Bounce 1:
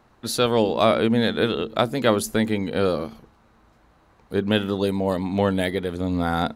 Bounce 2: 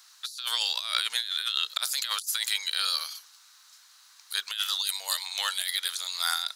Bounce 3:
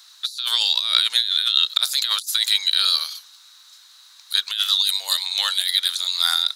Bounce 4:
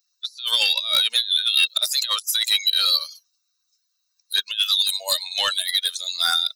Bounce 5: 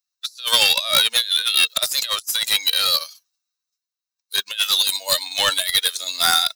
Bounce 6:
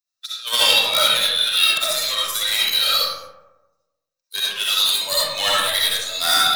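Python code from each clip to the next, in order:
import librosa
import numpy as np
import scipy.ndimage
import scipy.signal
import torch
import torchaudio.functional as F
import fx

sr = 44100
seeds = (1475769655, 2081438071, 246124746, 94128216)

y1 = scipy.signal.sosfilt(scipy.signal.butter(4, 1400.0, 'highpass', fs=sr, output='sos'), x)
y1 = fx.high_shelf_res(y1, sr, hz=3300.0, db=13.5, q=1.5)
y1 = fx.over_compress(y1, sr, threshold_db=-31.0, ratio=-1.0)
y2 = fx.peak_eq(y1, sr, hz=3800.0, db=10.0, octaves=0.35)
y2 = F.gain(torch.from_numpy(y2), 3.0).numpy()
y3 = fx.bin_expand(y2, sr, power=2.0)
y3 = fx.small_body(y3, sr, hz=(570.0, 2700.0), ring_ms=25, db=13)
y3 = 10.0 ** (-18.0 / 20.0) * np.tanh(y3 / 10.0 ** (-18.0 / 20.0))
y3 = F.gain(torch.from_numpy(y3), 6.5).numpy()
y4 = fx.envelope_flatten(y3, sr, power=0.6)
y4 = fx.rider(y4, sr, range_db=5, speed_s=2.0)
y4 = fx.band_widen(y4, sr, depth_pct=40)
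y4 = F.gain(torch.from_numpy(y4), 2.0).numpy()
y5 = fx.rev_freeverb(y4, sr, rt60_s=1.1, hf_ratio=0.4, predelay_ms=25, drr_db=-7.0)
y5 = F.gain(torch.from_numpy(y5), -5.5).numpy()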